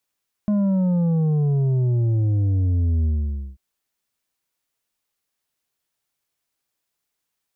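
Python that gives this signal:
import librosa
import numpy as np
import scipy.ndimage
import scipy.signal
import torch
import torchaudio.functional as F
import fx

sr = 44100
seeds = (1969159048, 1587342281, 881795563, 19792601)

y = fx.sub_drop(sr, level_db=-17.5, start_hz=210.0, length_s=3.09, drive_db=6.5, fade_s=0.52, end_hz=65.0)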